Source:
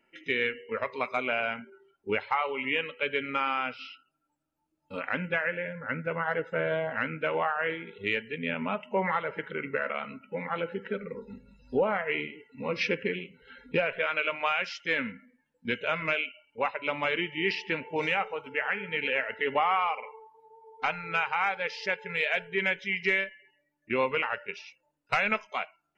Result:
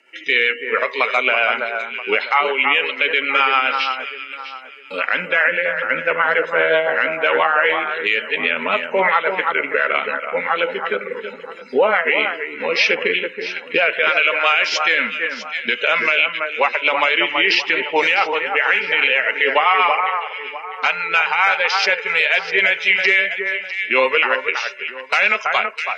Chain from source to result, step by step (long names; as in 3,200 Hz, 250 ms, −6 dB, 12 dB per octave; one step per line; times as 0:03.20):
high-pass filter 350 Hz 12 dB per octave
spectral tilt +3 dB per octave
rotating-speaker cabinet horn 7.5 Hz
high-frequency loss of the air 61 metres
delay that swaps between a low-pass and a high-pass 326 ms, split 1,800 Hz, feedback 52%, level −7.5 dB
boost into a limiter +21 dB
level −3.5 dB